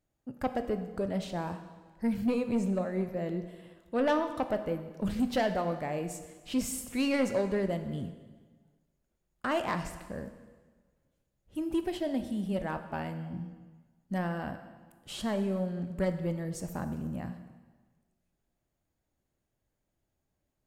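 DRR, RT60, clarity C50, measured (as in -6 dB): 8.0 dB, 1.4 s, 9.5 dB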